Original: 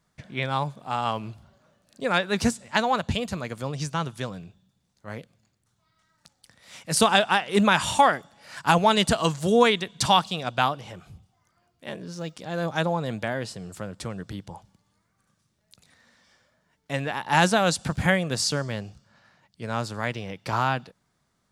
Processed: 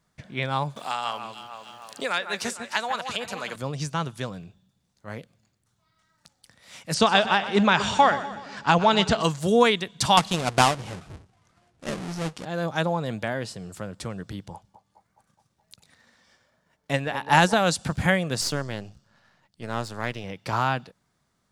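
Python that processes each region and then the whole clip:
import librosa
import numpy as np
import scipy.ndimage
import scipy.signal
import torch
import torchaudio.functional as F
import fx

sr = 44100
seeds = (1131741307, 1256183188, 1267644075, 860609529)

y = fx.chain(x, sr, fx.highpass(hz=1000.0, slope=6),
    fx.echo_alternate(ms=151, hz=2200.0, feedback_pct=56, wet_db=-9),
    fx.band_squash(depth_pct=70), at=(0.76, 3.56))
y = fx.chain(y, sr, fx.lowpass(hz=6500.0, slope=24),
    fx.echo_split(split_hz=420.0, low_ms=236, high_ms=124, feedback_pct=52, wet_db=-13.5), at=(6.94, 9.23))
y = fx.chain(y, sr, fx.halfwave_hold(),
    fx.lowpass(hz=10000.0, slope=24), at=(10.17, 12.45))
y = fx.chain(y, sr, fx.transient(attack_db=5, sustain_db=-5),
    fx.echo_banded(ms=210, feedback_pct=65, hz=660.0, wet_db=-9.5), at=(14.53, 17.54))
y = fx.chain(y, sr, fx.halfwave_gain(db=-7.0),
    fx.notch(hz=2300.0, q=26.0), at=(18.41, 20.24))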